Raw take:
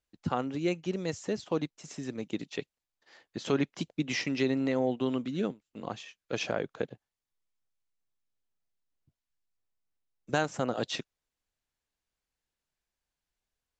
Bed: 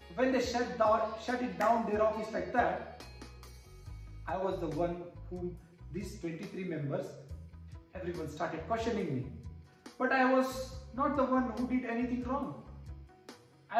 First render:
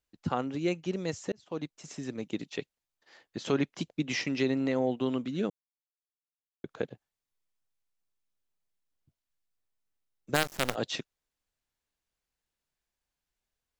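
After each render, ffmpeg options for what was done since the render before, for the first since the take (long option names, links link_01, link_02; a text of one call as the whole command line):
ffmpeg -i in.wav -filter_complex "[0:a]asplit=3[link_01][link_02][link_03];[link_01]afade=type=out:start_time=10.34:duration=0.02[link_04];[link_02]acrusher=bits=4:dc=4:mix=0:aa=0.000001,afade=type=in:start_time=10.34:duration=0.02,afade=type=out:start_time=10.74:duration=0.02[link_05];[link_03]afade=type=in:start_time=10.74:duration=0.02[link_06];[link_04][link_05][link_06]amix=inputs=3:normalize=0,asplit=4[link_07][link_08][link_09][link_10];[link_07]atrim=end=1.32,asetpts=PTS-STARTPTS,afade=type=out:start_time=1.316:duration=0.004:curve=hsin[link_11];[link_08]atrim=start=1.32:end=5.5,asetpts=PTS-STARTPTS,afade=type=in:duration=0.47,afade=type=out:start_time=4.176:duration=0.004:curve=hsin[link_12];[link_09]atrim=start=5.5:end=6.64,asetpts=PTS-STARTPTS,volume=0[link_13];[link_10]atrim=start=6.64,asetpts=PTS-STARTPTS,afade=type=in:duration=0.004:curve=hsin[link_14];[link_11][link_12][link_13][link_14]concat=n=4:v=0:a=1" out.wav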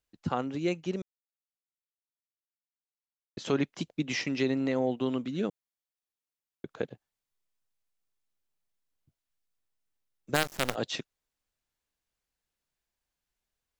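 ffmpeg -i in.wav -filter_complex "[0:a]asplit=3[link_01][link_02][link_03];[link_01]atrim=end=1.02,asetpts=PTS-STARTPTS,afade=type=out:start_time=1.016:duration=0.004:curve=hsin[link_04];[link_02]atrim=start=1.02:end=3.37,asetpts=PTS-STARTPTS,volume=0[link_05];[link_03]atrim=start=3.37,asetpts=PTS-STARTPTS,afade=type=in:duration=0.004:curve=hsin[link_06];[link_04][link_05][link_06]concat=n=3:v=0:a=1" out.wav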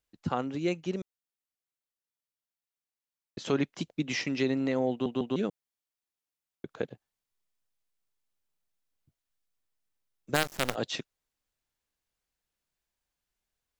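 ffmpeg -i in.wav -filter_complex "[0:a]asplit=4[link_01][link_02][link_03][link_04];[link_01]atrim=end=5.062[link_05];[link_02]atrim=start=4.908:end=5.062[link_06];[link_03]atrim=start=4.908:end=5.062[link_07];[link_04]atrim=start=5.358[link_08];[link_05][link_06]acrossfade=duration=0.004:curve1=hsin:curve2=hsin[link_09];[link_09][link_07]acrossfade=duration=0.004:curve1=hsin:curve2=hsin[link_10];[link_10][link_08]acrossfade=duration=0.004:curve1=hsin:curve2=hsin" out.wav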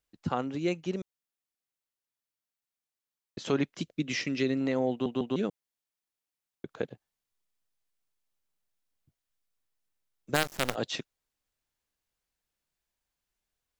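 ffmpeg -i in.wav -filter_complex "[0:a]asettb=1/sr,asplit=3[link_01][link_02][link_03];[link_01]atrim=end=3.754[link_04];[link_02]atrim=start=3.75:end=4.61,asetpts=PTS-STARTPTS,afade=type=in:duration=0.004:curve=qsin,afade=type=out:start_time=0.856:duration=0.004:curve=qsin,equalizer=frequency=860:width=3.5:gain=-12.5[link_05];[link_03]atrim=start=4.606[link_06];[link_04][link_05]acrossfade=duration=0.004:curve1=hsin:curve2=qsin[link_07];[link_07][link_06]acrossfade=duration=0.004:curve1=qsin:curve2=hsin" out.wav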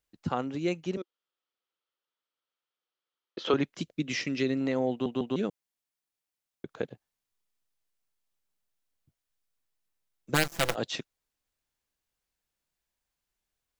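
ffmpeg -i in.wav -filter_complex "[0:a]asettb=1/sr,asplit=3[link_01][link_02][link_03];[link_01]atrim=end=0.974[link_04];[link_02]atrim=start=0.97:end=3.54,asetpts=PTS-STARTPTS,afade=type=in:duration=0.004:curve=qsin,afade=type=out:start_time=2.566:duration=0.004:curve=qsin,highpass=280,equalizer=frequency=350:width_type=q:width=4:gain=6,equalizer=frequency=500:width_type=q:width=4:gain=8,equalizer=frequency=920:width_type=q:width=4:gain=3,equalizer=frequency=1300:width_type=q:width=4:gain=10,equalizer=frequency=3200:width_type=q:width=4:gain=8,lowpass=frequency=5100:width=0.5412,lowpass=frequency=5100:width=1.3066[link_05];[link_03]atrim=start=3.536[link_06];[link_04][link_05]acrossfade=duration=0.004:curve1=hsin:curve2=qsin[link_07];[link_07][link_06]acrossfade=duration=0.004:curve1=qsin:curve2=hsin,asettb=1/sr,asplit=3[link_08][link_09][link_10];[link_08]atrim=end=10.324[link_11];[link_09]atrim=start=10.32:end=10.74,asetpts=PTS-STARTPTS,afade=type=in:duration=0.004:curve=qsin,afade=type=out:start_time=0.416:duration=0.004:curve=qsin,aecho=1:1:6:0.85,atrim=end_sample=18522[link_12];[link_10]atrim=start=10.736[link_13];[link_11][link_12]acrossfade=duration=0.004:curve1=hsin:curve2=qsin[link_14];[link_14][link_13]acrossfade=duration=0.004:curve1=qsin:curve2=hsin" out.wav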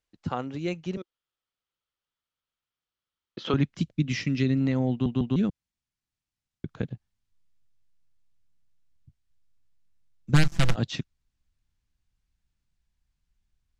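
ffmpeg -i in.wav -af "lowpass=7300,asubboost=boost=9:cutoff=160" out.wav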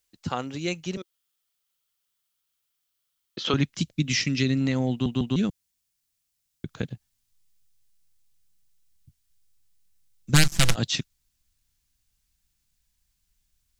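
ffmpeg -i in.wav -af "crystalizer=i=4.5:c=0" out.wav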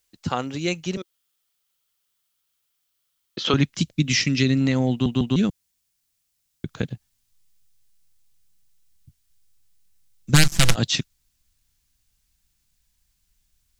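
ffmpeg -i in.wav -af "volume=4dB,alimiter=limit=-1dB:level=0:latency=1" out.wav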